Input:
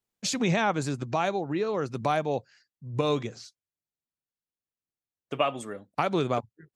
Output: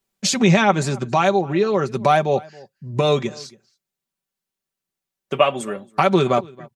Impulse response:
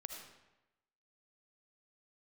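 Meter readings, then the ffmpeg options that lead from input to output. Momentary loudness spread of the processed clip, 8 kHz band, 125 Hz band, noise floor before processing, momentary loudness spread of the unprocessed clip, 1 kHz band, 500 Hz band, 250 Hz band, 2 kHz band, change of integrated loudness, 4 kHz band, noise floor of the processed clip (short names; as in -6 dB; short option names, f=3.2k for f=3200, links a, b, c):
12 LU, +9.5 dB, +9.5 dB, under -85 dBFS, 11 LU, +9.5 dB, +10.0 dB, +9.5 dB, +9.0 dB, +9.5 dB, +9.5 dB, under -85 dBFS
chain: -filter_complex "[0:a]aecho=1:1:5.2:0.59,asplit=2[a][b];[b]adelay=274.1,volume=-23dB,highshelf=f=4k:g=-6.17[c];[a][c]amix=inputs=2:normalize=0,volume=8dB"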